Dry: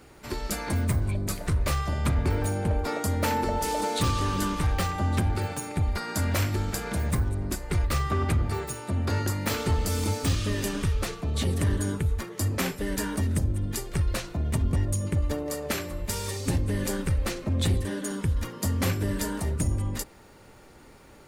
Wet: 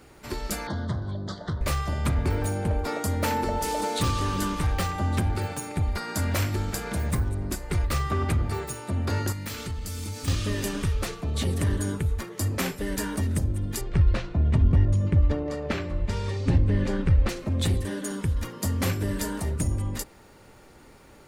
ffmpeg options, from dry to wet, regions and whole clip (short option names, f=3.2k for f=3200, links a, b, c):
-filter_complex "[0:a]asettb=1/sr,asplit=3[a][b][c];[a]atrim=end=0.674[d];[b]atrim=start=0.67:end=1.61,asetpts=PTS-STARTPTS,afade=t=in:d=0.004:c=qsin,afade=t=out:st=0.936:d=0.004:c=qsin,asuperstop=centerf=2500:order=4:qfactor=1.3,highpass=110,equalizer=f=270:t=q:w=4:g=-5,equalizer=f=430:t=q:w=4:g=-4,equalizer=f=3.3k:t=q:w=4:g=9,lowpass=f=4.8k:w=0.5412,lowpass=f=4.8k:w=1.3066[e];[c]atrim=start=1.606[f];[d][e]acrossfade=d=0.004:c1=hsin:c2=qsin[g];[g][f]acrossfade=d=0.004:c1=qsin:c2=hsin,asettb=1/sr,asplit=3[h][i][j];[h]atrim=end=9.324[k];[i]atrim=start=9.32:end=10.28,asetpts=PTS-STARTPTS,afade=t=in:d=0.004:c=qsin,afade=t=out:st=0.956:d=0.004:c=qsin,equalizer=f=610:w=0.53:g=-8.5,acompressor=threshold=-31dB:ratio=3:attack=3.2:release=140:knee=1:detection=peak[l];[j]atrim=start=10.276[m];[k][l]acrossfade=d=0.004:c1=hsin:c2=qsin[n];[n][m]acrossfade=d=0.004:c1=qsin:c2=hsin,asettb=1/sr,asplit=3[o][p][q];[o]atrim=end=13.814[r];[p]atrim=start=13.81:end=17.29,asetpts=PTS-STARTPTS,afade=t=in:d=0.004:c=qsin,afade=t=out:st=3.476:d=0.004:c=qsin,lowpass=3.5k,lowshelf=f=210:g=7[s];[q]atrim=start=17.286[t];[r][s]acrossfade=d=0.004:c1=hsin:c2=qsin[u];[u][t]acrossfade=d=0.004:c1=qsin:c2=hsin"